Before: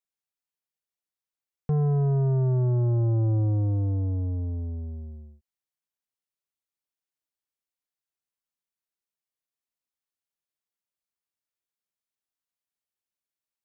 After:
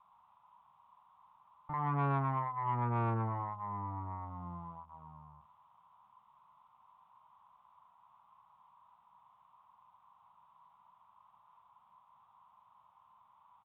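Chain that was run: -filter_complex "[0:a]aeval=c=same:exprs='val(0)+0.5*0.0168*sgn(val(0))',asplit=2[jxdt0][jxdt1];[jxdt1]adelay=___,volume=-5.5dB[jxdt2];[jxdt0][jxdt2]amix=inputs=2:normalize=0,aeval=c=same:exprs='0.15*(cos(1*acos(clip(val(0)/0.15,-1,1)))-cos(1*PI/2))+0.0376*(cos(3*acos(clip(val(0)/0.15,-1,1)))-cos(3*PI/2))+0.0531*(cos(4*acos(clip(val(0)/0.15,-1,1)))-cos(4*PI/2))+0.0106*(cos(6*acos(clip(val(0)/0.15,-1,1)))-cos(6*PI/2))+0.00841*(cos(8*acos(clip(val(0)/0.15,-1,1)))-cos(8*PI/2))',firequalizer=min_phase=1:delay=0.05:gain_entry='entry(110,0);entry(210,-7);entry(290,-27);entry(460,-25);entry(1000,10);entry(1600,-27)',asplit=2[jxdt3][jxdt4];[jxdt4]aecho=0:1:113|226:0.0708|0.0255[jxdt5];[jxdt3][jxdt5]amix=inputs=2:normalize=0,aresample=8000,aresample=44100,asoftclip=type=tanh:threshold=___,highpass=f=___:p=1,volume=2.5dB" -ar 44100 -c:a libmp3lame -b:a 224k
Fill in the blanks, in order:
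43, -21dB, 560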